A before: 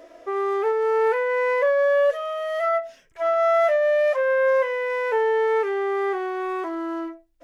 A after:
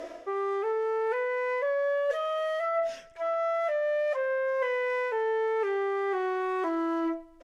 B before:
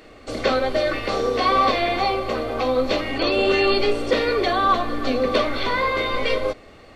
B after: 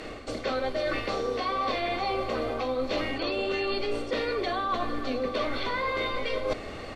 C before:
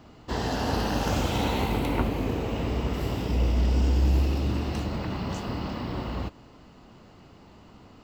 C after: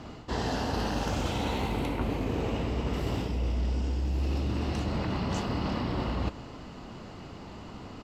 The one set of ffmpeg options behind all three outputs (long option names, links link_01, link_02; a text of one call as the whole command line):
ffmpeg -i in.wav -af "lowpass=11000,areverse,acompressor=threshold=-34dB:ratio=10,areverse,aecho=1:1:131|262|393:0.0668|0.0307|0.0141,volume=7.5dB" out.wav